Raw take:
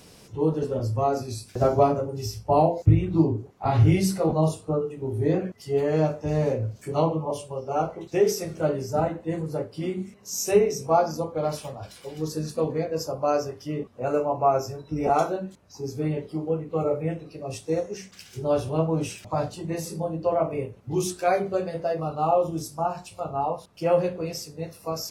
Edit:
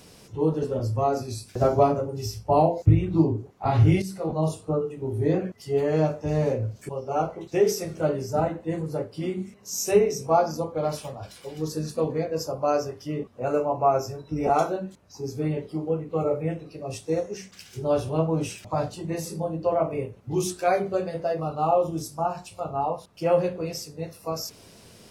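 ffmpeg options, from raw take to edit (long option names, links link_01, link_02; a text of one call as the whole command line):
ffmpeg -i in.wav -filter_complex "[0:a]asplit=3[link_01][link_02][link_03];[link_01]atrim=end=4.02,asetpts=PTS-STARTPTS,afade=type=out:start_time=4.016:duration=0.004:curve=hsin:silence=0.237137[link_04];[link_02]atrim=start=4.02:end=6.892,asetpts=PTS-STARTPTS,afade=type=in:duration=0.63:silence=0.237137[link_05];[link_03]atrim=start=7.488[link_06];[link_04][link_05]concat=n=2:v=0:a=1[link_07];[link_07][link_06]acrossfade=duration=0.004:curve1=hsin:curve2=hsin" out.wav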